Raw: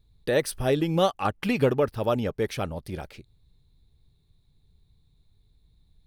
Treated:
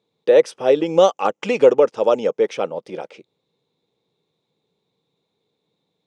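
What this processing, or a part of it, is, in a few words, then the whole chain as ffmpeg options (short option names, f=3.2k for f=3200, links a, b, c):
television speaker: -filter_complex "[0:a]highpass=f=220:w=0.5412,highpass=f=220:w=1.3066,equalizer=f=250:t=q:w=4:g=-6,equalizer=f=500:t=q:w=4:g=10,equalizer=f=900:t=q:w=4:g=3,equalizer=f=1.7k:t=q:w=4:g=-6,equalizer=f=4.3k:t=q:w=4:g=-10,lowpass=f=6.5k:w=0.5412,lowpass=f=6.5k:w=1.3066,asettb=1/sr,asplit=3[a][b][c];[a]atrim=end=0.864[d];[b]atrim=start=0.86:end=2.38,asetpts=PTS-STARTPTS,afade=t=in:d=0.004:c=qsin,afade=t=out:st=1.516:d=0.004:c=qsin,equalizer=f=6.9k:w=2:g=11[e];[c]atrim=start=2.376[f];[d][e]acrossfade=d=0.004:c1=hsin:c2=qsin[g];[g][f]acrossfade=d=0.004:c1=qsin:c2=hsin,volume=5dB"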